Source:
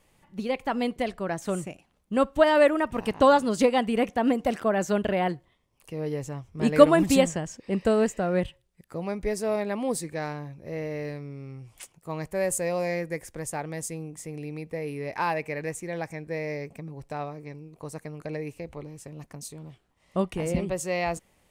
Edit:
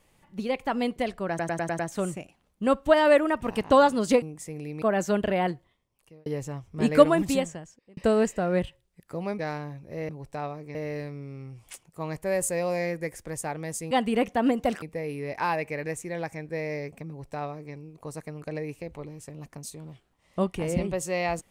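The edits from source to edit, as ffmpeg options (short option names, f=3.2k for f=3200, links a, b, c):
-filter_complex "[0:a]asplit=15[a][b][c][d][e][f][g][h][i][j][k][l][m][n][o];[a]atrim=end=1.392[p];[b]atrim=start=1.288:end=1.392[q];[c]atrim=start=1.288:end=1.392[r];[d]atrim=start=1.288:end=1.392[s];[e]atrim=start=1.288:end=1.392[t];[f]atrim=start=1.288:end=3.722[u];[g]atrim=start=13.998:end=14.602[v];[h]atrim=start=4.628:end=6.07,asetpts=PTS-STARTPTS,afade=t=out:st=0.702:d=0.74[w];[i]atrim=start=6.07:end=7.78,asetpts=PTS-STARTPTS,afade=t=in:d=0.004:c=hsin,afade=t=out:st=0.58:d=1.13[x];[j]atrim=start=7.78:end=9.202,asetpts=PTS-STARTPTS,afade=t=in:d=0.004:c=hsin[y];[k]atrim=start=10.138:end=10.842[z];[l]atrim=start=16.858:end=17.522[aa];[m]atrim=start=10.838:end=14.002[ab];[n]atrim=start=3.718:end=4.632[ac];[o]atrim=start=14.598[ad];[p][q]acrossfade=d=0.004:c1=hsin:c2=hsin[ae];[ae][r]acrossfade=d=0.004:c1=hsin:c2=hsin[af];[af][s]acrossfade=d=0.004:c1=hsin:c2=hsin[ag];[ag][t]acrossfade=d=0.004:c1=hsin:c2=hsin[ah];[ah][u]acrossfade=d=0.004:c1=hsin:c2=hsin[ai];[ai][v]acrossfade=d=0.004:c1=hsin:c2=hsin[aj];[w][x][y]concat=n=3:v=0:a=1[ak];[aj][ak]acrossfade=d=0.004:c1=hsin:c2=hsin[al];[al][z]acrossfade=d=0.004:c1=hsin:c2=hsin[am];[am][aa]acrossfade=d=0.004:c1=hsin:c2=hsin[an];[an][ab]acrossfade=d=0.004:c1=hsin:c2=hsin[ao];[ao][ac]acrossfade=d=0.004:c1=hsin:c2=hsin[ap];[ap][ad]acrossfade=d=0.004:c1=hsin:c2=hsin"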